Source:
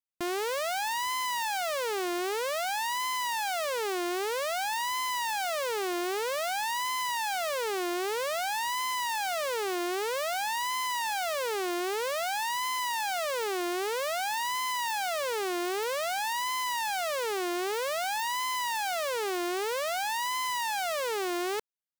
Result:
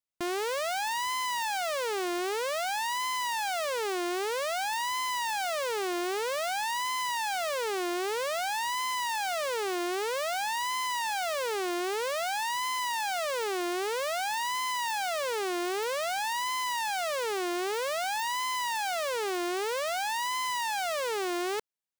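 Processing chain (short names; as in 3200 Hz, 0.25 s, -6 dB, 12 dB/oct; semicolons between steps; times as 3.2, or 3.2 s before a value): bell 14000 Hz -6 dB 0.31 oct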